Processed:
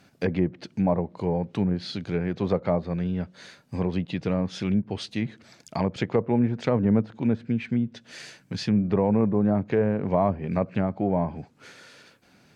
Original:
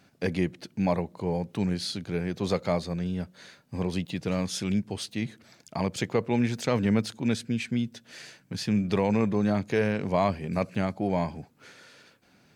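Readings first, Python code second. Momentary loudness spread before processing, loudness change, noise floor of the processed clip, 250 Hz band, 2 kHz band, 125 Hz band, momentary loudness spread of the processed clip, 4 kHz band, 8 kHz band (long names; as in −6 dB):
10 LU, +2.5 dB, −59 dBFS, +3.0 dB, −2.5 dB, +3.0 dB, 10 LU, −3.0 dB, can't be measured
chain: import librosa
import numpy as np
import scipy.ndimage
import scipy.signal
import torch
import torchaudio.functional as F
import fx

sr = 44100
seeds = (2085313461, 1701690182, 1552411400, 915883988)

y = fx.env_lowpass_down(x, sr, base_hz=1000.0, full_db=-22.5)
y = y * librosa.db_to_amplitude(3.0)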